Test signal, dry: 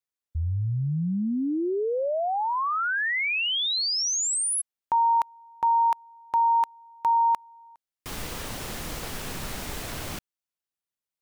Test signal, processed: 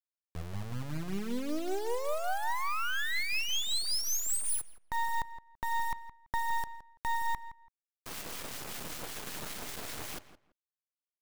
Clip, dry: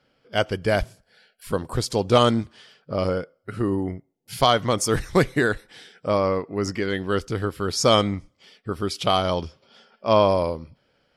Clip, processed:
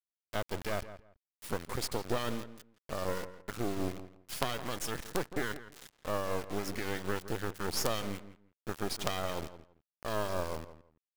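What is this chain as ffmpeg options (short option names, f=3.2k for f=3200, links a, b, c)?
-filter_complex "[0:a]lowshelf=f=130:g=-10.5,acompressor=threshold=-23dB:ratio=5:attack=3.1:release=229:knee=1:detection=rms,acrossover=split=1400[a][b];[a]aeval=exprs='val(0)*(1-0.5/2+0.5/2*cos(2*PI*5.2*n/s))':c=same[c];[b]aeval=exprs='val(0)*(1-0.5/2-0.5/2*cos(2*PI*5.2*n/s))':c=same[d];[c][d]amix=inputs=2:normalize=0,acrusher=bits=4:dc=4:mix=0:aa=0.000001,asplit=2[e][f];[f]adelay=167,lowpass=f=2.3k:p=1,volume=-13dB,asplit=2[g][h];[h]adelay=167,lowpass=f=2.3k:p=1,volume=0.2[i];[g][i]amix=inputs=2:normalize=0[j];[e][j]amix=inputs=2:normalize=0"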